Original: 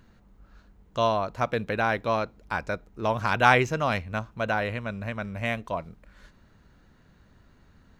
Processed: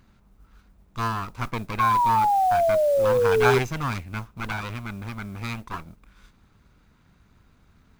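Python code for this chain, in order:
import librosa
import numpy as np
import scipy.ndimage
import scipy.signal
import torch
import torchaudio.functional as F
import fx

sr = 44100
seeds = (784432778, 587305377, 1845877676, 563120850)

y = fx.lower_of_two(x, sr, delay_ms=0.81)
y = fx.spec_paint(y, sr, seeds[0], shape='fall', start_s=1.79, length_s=1.8, low_hz=390.0, high_hz=1100.0, level_db=-20.0)
y = fx.mod_noise(y, sr, seeds[1], snr_db=26)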